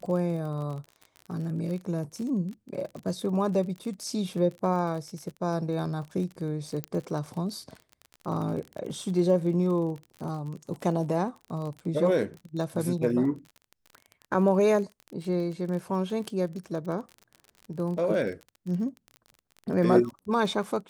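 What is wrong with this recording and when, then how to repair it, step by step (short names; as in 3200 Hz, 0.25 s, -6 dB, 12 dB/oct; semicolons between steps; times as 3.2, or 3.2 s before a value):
crackle 38/s -35 dBFS
6.84 pop -17 dBFS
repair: de-click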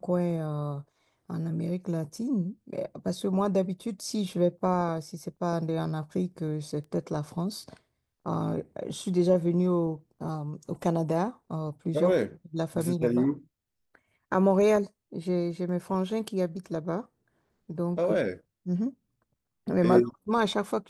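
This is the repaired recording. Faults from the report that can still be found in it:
6.84 pop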